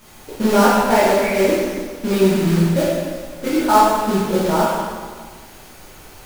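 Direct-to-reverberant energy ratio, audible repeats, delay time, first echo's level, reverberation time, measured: −10.0 dB, no echo audible, no echo audible, no echo audible, 1.6 s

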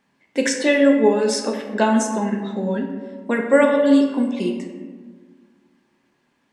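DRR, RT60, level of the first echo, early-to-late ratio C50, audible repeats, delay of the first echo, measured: 2.0 dB, 1.6 s, no echo audible, 5.0 dB, no echo audible, no echo audible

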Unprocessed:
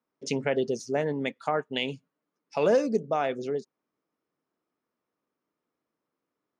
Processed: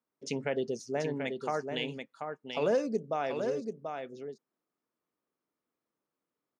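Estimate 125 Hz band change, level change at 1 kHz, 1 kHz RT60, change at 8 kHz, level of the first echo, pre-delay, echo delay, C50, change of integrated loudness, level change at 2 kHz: −4.5 dB, −4.5 dB, no reverb audible, can't be measured, −6.0 dB, no reverb audible, 735 ms, no reverb audible, −5.5 dB, −4.5 dB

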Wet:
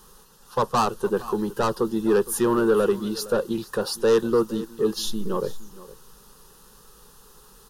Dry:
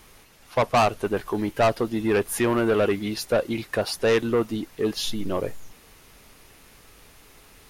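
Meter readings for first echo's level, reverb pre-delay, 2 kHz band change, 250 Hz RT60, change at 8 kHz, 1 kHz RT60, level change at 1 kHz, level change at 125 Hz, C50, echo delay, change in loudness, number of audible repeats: −18.5 dB, no reverb audible, −5.5 dB, no reverb audible, +2.0 dB, no reverb audible, −0.5 dB, −3.0 dB, no reverb audible, 463 ms, +0.5 dB, 1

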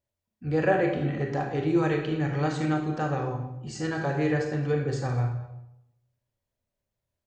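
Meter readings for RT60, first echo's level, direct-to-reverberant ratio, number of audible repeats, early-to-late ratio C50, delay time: 0.85 s, −20.5 dB, 2.0 dB, 1, 5.0 dB, 220 ms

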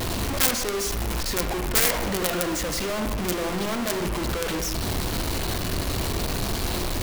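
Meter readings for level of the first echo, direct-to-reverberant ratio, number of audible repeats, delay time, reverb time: no echo audible, 5.5 dB, no echo audible, no echo audible, 1.1 s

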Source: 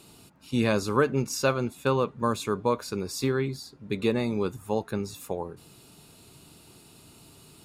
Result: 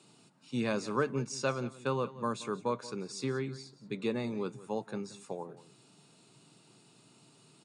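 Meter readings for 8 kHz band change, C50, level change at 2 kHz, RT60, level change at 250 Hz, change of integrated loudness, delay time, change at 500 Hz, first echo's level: −7.5 dB, no reverb audible, −7.0 dB, no reverb audible, −7.5 dB, −7.5 dB, 178 ms, −7.5 dB, −17.0 dB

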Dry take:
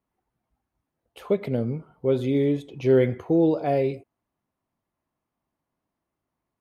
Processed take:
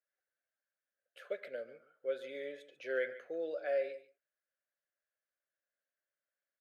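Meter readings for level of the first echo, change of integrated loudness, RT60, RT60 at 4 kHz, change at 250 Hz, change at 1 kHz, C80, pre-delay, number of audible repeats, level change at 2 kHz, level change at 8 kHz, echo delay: −16.0 dB, −16.0 dB, no reverb audible, no reverb audible, −29.5 dB, −18.0 dB, no reverb audible, no reverb audible, 1, −3.5 dB, can't be measured, 143 ms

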